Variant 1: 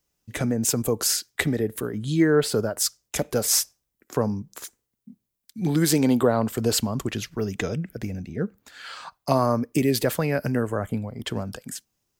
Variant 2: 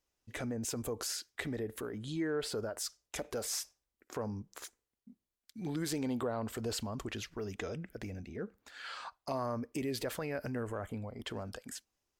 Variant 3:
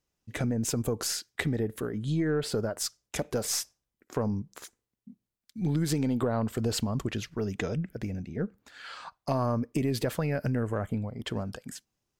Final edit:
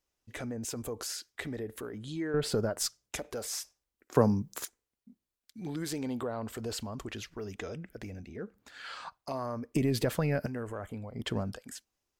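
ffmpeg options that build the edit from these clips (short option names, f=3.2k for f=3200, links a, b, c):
-filter_complex "[2:a]asplit=4[a][b][c][d];[1:a]asplit=6[e][f][g][h][i][j];[e]atrim=end=2.342[k];[a]atrim=start=2.338:end=3.162[l];[f]atrim=start=3.158:end=4.152[m];[0:a]atrim=start=4.148:end=4.652[n];[g]atrim=start=4.648:end=8.562[o];[b]atrim=start=8.558:end=9.222[p];[h]atrim=start=9.218:end=9.742[q];[c]atrim=start=9.738:end=10.462[r];[i]atrim=start=10.458:end=11.142[s];[d]atrim=start=11.138:end=11.542[t];[j]atrim=start=11.538[u];[k][l]acrossfade=d=0.004:c1=hsin:c2=hsin[v];[v][m]acrossfade=d=0.004:c1=hsin:c2=hsin[w];[w][n]acrossfade=d=0.004:c1=hsin:c2=hsin[x];[x][o]acrossfade=d=0.004:c1=hsin:c2=hsin[y];[y][p]acrossfade=d=0.004:c1=hsin:c2=hsin[z];[z][q]acrossfade=d=0.004:c1=hsin:c2=hsin[aa];[aa][r]acrossfade=d=0.004:c1=hsin:c2=hsin[ab];[ab][s]acrossfade=d=0.004:c1=hsin:c2=hsin[ac];[ac][t]acrossfade=d=0.004:c1=hsin:c2=hsin[ad];[ad][u]acrossfade=d=0.004:c1=hsin:c2=hsin"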